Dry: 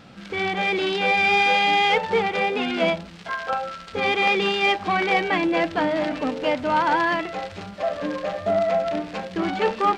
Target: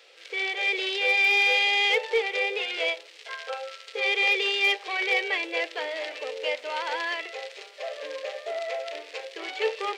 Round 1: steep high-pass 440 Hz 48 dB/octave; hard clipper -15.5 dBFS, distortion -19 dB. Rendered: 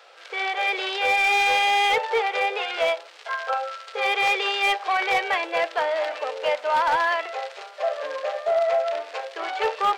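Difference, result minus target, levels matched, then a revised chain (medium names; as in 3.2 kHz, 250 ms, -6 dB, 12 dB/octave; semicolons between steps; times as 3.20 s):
1 kHz band +9.5 dB
steep high-pass 440 Hz 48 dB/octave; high-order bell 980 Hz -12 dB 1.6 oct; hard clipper -15.5 dBFS, distortion -34 dB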